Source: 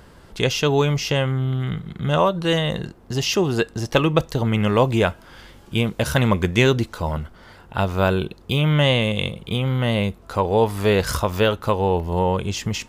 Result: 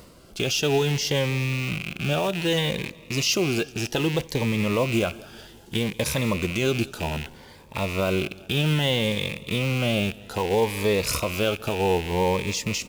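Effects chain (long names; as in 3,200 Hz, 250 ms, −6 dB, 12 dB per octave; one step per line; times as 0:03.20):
loose part that buzzes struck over −33 dBFS, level −17 dBFS
in parallel at −9.5 dB: log-companded quantiser 4 bits
on the sum: brickwall limiter −8 dBFS, peak gain reduction 8.5 dB
low-shelf EQ 180 Hz −11 dB
reversed playback
upward compression, threshold −36 dBFS
reversed playback
parametric band 1,500 Hz −5.5 dB 1.9 octaves
repeating echo 189 ms, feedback 54%, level −22 dB
phaser whose notches keep moving one way rising 0.63 Hz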